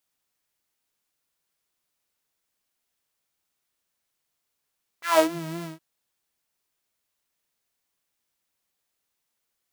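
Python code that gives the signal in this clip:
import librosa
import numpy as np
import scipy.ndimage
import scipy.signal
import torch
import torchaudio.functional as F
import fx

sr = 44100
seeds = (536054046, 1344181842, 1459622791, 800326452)

y = fx.sub_patch_vibrato(sr, seeds[0], note=64, wave='saw', wave2='saw', interval_st=0, detune_cents=29, level2_db=-9.0, sub_db=-14.0, noise_db=-14.5, kind='highpass', cutoff_hz=130.0, q=4.0, env_oct=4.0, env_decay_s=0.35, env_sustain_pct=5, attack_ms=160.0, decay_s=0.1, sustain_db=-18, release_s=0.15, note_s=0.62, lfo_hz=3.9, vibrato_cents=68)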